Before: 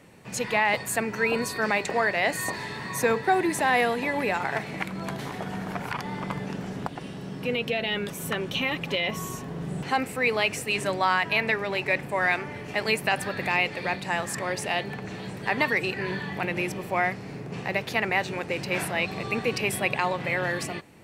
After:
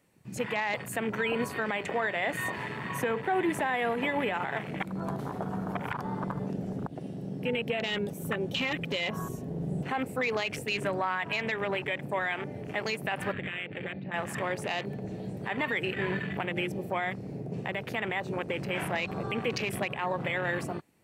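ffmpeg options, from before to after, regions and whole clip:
ffmpeg -i in.wav -filter_complex "[0:a]asettb=1/sr,asplit=3[link_01][link_02][link_03];[link_01]atrim=end=13.324[link_04];[link_02]atrim=start=13.32:end=14.14,asetpts=PTS-STARTPTS,afade=type=in:duration=0.004:curve=qsin,afade=type=out:start_time=0.816:duration=0.004:curve=qsin,lowpass=frequency=3000:width=0.5412,lowpass=frequency=3000:width=1.3066,equalizer=frequency=840:width_type=o:width=1:gain=-8,acompressor=threshold=-30dB:ratio=6:attack=3.2:release=140:knee=1:detection=peak[link_05];[link_03]atrim=start=14.136[link_06];[link_04][link_05]acrossfade=duration=0.004:curve1=hsin:curve2=qsin[link_07];[link_07][link_06]acrossfade=duration=0.004:curve1=qsin:curve2=hsin,afwtdn=0.0224,highshelf=frequency=8100:gain=11,alimiter=limit=-20dB:level=0:latency=1:release=93" out.wav

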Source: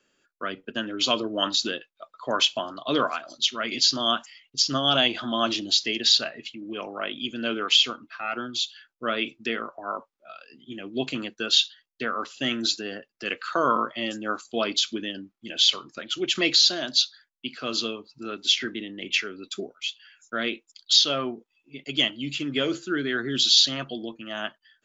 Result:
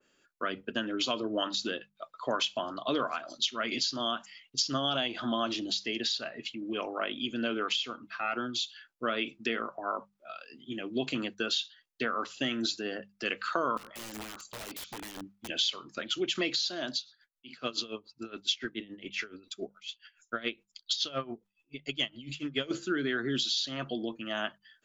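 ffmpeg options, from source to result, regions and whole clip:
ffmpeg -i in.wav -filter_complex "[0:a]asettb=1/sr,asplit=3[link_01][link_02][link_03];[link_01]atrim=end=13.774[link_04];[link_02]atrim=start=13.77:end=15.49,asetpts=PTS-STARTPTS,afade=type=in:duration=0.004:curve=qsin,afade=type=out:start_time=1.716:duration=0.004:curve=qsin,acompressor=threshold=-37dB:ratio=6:attack=3.2:release=140:knee=1:detection=peak,aeval=exprs='(mod(59.6*val(0)+1,2)-1)/59.6':channel_layout=same[link_05];[link_03]atrim=start=15.486[link_06];[link_04][link_05]acrossfade=duration=0.004:curve1=hsin:curve2=qsin[link_07];[link_07][link_06]acrossfade=duration=0.004:curve1=qsin:curve2=hsin,asettb=1/sr,asplit=3[link_08][link_09][link_10];[link_08]atrim=end=16.964[link_11];[link_09]atrim=start=16.96:end=22.71,asetpts=PTS-STARTPTS,afade=type=in:duration=0.004:curve=qsin,afade=type=out:start_time=5.746:duration=0.004:curve=qsin,asubboost=boost=3:cutoff=110,aeval=exprs='val(0)*pow(10,-19*(0.5-0.5*cos(2*PI*7.1*n/s))/20)':channel_layout=same[link_12];[link_10]atrim=start=22.706[link_13];[link_11][link_12]acrossfade=duration=0.004:curve1=hsin:curve2=qsin[link_14];[link_14][link_13]acrossfade=duration=0.004:curve1=qsin:curve2=hsin,bandreject=frequency=50:width_type=h:width=6,bandreject=frequency=100:width_type=h:width=6,bandreject=frequency=150:width_type=h:width=6,bandreject=frequency=200:width_type=h:width=6,acompressor=threshold=-27dB:ratio=4,adynamicequalizer=threshold=0.00631:dfrequency=2100:dqfactor=0.7:tfrequency=2100:tqfactor=0.7:attack=5:release=100:ratio=0.375:range=2:mode=cutabove:tftype=highshelf" out.wav

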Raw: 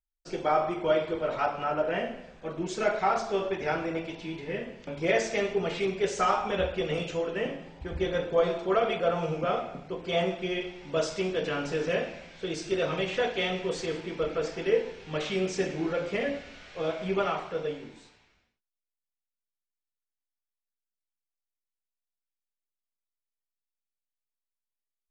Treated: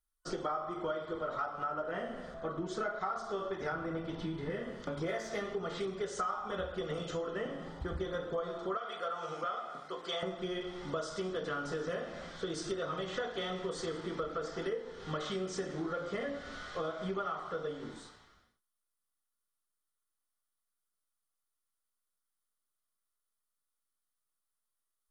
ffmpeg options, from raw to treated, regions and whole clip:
ffmpeg -i in.wav -filter_complex "[0:a]asettb=1/sr,asplit=3[link_01][link_02][link_03];[link_01]atrim=end=2.344[link_04];[link_02]atrim=start=2.34:end=3.01,asetpts=PTS-STARTPTS,afade=type=in:duration=0.004:curve=qsin,afade=type=out:start_time=0.666:duration=0.004:curve=qsin,highshelf=frequency=6000:gain=-12,aeval=exprs='val(0)+0.00501*sin(2*PI*660*n/s)':channel_layout=same[link_05];[link_03]atrim=start=3.006[link_06];[link_04][link_05]acrossfade=duration=0.004:curve1=hsin:curve2=qsin[link_07];[link_07][link_06]acrossfade=duration=0.004:curve1=qsin:curve2=hsin,asettb=1/sr,asplit=3[link_08][link_09][link_10];[link_08]atrim=end=3.724[link_11];[link_09]atrim=start=3.72:end=4.5,asetpts=PTS-STARTPTS,afade=type=in:duration=0.004:curve=qsin,afade=type=out:start_time=0.776:duration=0.004:curve=qsin,bass=frequency=250:gain=6,treble=frequency=4000:gain=-6,bandreject=frequency=6900:width=16[link_12];[link_10]atrim=start=4.496[link_13];[link_11][link_12]acrossfade=duration=0.004:curve1=hsin:curve2=qsin[link_14];[link_14][link_13]acrossfade=duration=0.004:curve1=qsin:curve2=hsin,asettb=1/sr,asplit=3[link_15][link_16][link_17];[link_15]atrim=end=5.034[link_18];[link_16]atrim=start=5.03:end=5.53,asetpts=PTS-STARTPTS,afade=type=in:duration=0.004:curve=qsin,afade=type=out:start_time=0.496:duration=0.004:curve=qsin,adynamicsmooth=sensitivity=5:basefreq=7700,asplit=2[link_19][link_20];[link_20]adelay=19,volume=-6.5dB[link_21];[link_19][link_21]amix=inputs=2:normalize=0,atrim=end_sample=22050[link_22];[link_17]atrim=start=5.526[link_23];[link_18][link_22]acrossfade=duration=0.004:curve1=hsin:curve2=qsin[link_24];[link_24][link_23]acrossfade=duration=0.004:curve1=qsin:curve2=hsin,asettb=1/sr,asplit=3[link_25][link_26][link_27];[link_25]atrim=end=8.774[link_28];[link_26]atrim=start=8.77:end=10.23,asetpts=PTS-STARTPTS,afade=type=in:duration=0.004:curve=qsin,afade=type=out:start_time=1.456:duration=0.004:curve=qsin,highpass=frequency=1200:poles=1,asplit=2[link_29][link_30];[link_30]adelay=14,volume=-12dB[link_31];[link_29][link_31]amix=inputs=2:normalize=0,atrim=end_sample=64386[link_32];[link_27]atrim=start=10.226[link_33];[link_28][link_32]acrossfade=duration=0.004:curve1=hsin:curve2=qsin[link_34];[link_34][link_33]acrossfade=duration=0.004:curve1=qsin:curve2=hsin,superequalizer=10b=2.51:12b=0.282:16b=2.51,acompressor=threshold=-37dB:ratio=6,volume=2.5dB" out.wav

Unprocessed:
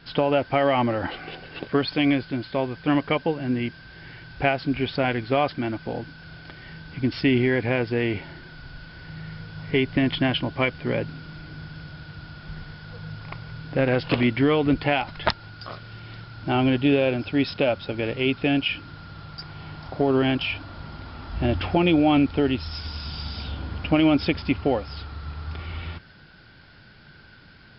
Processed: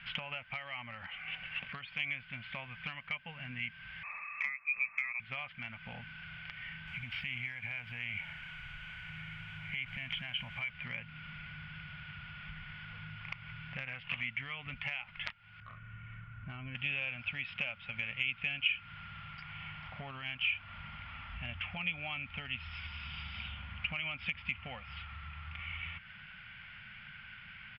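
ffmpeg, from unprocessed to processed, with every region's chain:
ffmpeg -i in.wav -filter_complex "[0:a]asettb=1/sr,asplit=3[link_01][link_02][link_03];[link_01]atrim=end=4.034[link_04];[link_02]atrim=start=4.03:end=5.2,asetpts=PTS-STARTPTS,afade=type=in:duration=0.004:curve=qsin,afade=type=out:start_time=1.166:duration=0.004:curve=qsin,aemphasis=mode=production:type=bsi,lowpass=frequency=2300:width_type=q:width=0.5098,lowpass=frequency=2300:width_type=q:width=0.6013,lowpass=frequency=2300:width_type=q:width=0.9,lowpass=frequency=2300:width_type=q:width=2.563,afreqshift=-2700[link_05];[link_03]atrim=start=5.196[link_06];[link_04][link_05]acrossfade=duration=0.004:curve1=hsin:curve2=qsin[link_07];[link_07][link_06]acrossfade=duration=0.004:curve1=qsin:curve2=hsin,asettb=1/sr,asplit=3[link_08][link_09][link_10];[link_08]atrim=end=6.874[link_11];[link_09]atrim=start=6.87:end=10.7,asetpts=PTS-STARTPTS,afade=type=in:duration=0.004:curve=qsin,afade=type=out:start_time=3.826:duration=0.004:curve=qsin,aecho=1:1:1.3:0.35,atrim=end_sample=168903,acompressor=threshold=-26dB:ratio=12:attack=3.2:release=140:knee=1:detection=peak,acrusher=bits=6:mix=0:aa=0.5[link_12];[link_10]atrim=start=10.696[link_13];[link_11][link_12]acrossfade=duration=0.004:curve1=hsin:curve2=qsin[link_14];[link_14][link_13]acrossfade=duration=0.004:curve1=qsin:curve2=hsin,asettb=1/sr,asplit=3[link_15][link_16][link_17];[link_15]atrim=end=15.604[link_18];[link_16]atrim=start=15.6:end=16.75,asetpts=PTS-STARTPTS,afade=type=in:duration=0.004:curve=qsin,afade=type=out:start_time=1.146:duration=0.004:curve=qsin,lowpass=1000,equalizer=frequency=780:width=2.4:gain=-14.5,aecho=1:1:2.7:0.33,atrim=end_sample=50715[link_19];[link_17]atrim=start=16.746[link_20];[link_18][link_19]acrossfade=duration=0.004:curve1=hsin:curve2=qsin[link_21];[link_21][link_20]acrossfade=duration=0.004:curve1=qsin:curve2=hsin,firequalizer=gain_entry='entry(210,0);entry(320,-27);entry(560,-7);entry(1300,15);entry(2200,11);entry(4000,-29)':delay=0.05:min_phase=1,acompressor=threshold=-34dB:ratio=6,highshelf=frequency=2200:width_type=q:width=3:gain=13.5,volume=-7dB" out.wav

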